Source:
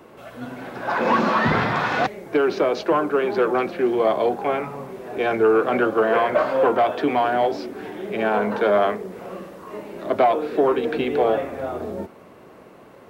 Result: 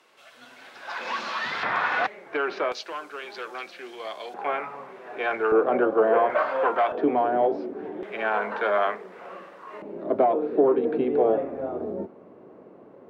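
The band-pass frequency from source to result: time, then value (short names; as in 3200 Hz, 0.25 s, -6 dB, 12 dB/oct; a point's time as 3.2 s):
band-pass, Q 0.82
4500 Hz
from 1.63 s 1600 Hz
from 2.72 s 5200 Hz
from 4.34 s 1500 Hz
from 5.52 s 570 Hz
from 6.3 s 1400 Hz
from 6.92 s 420 Hz
from 8.03 s 1500 Hz
from 9.82 s 350 Hz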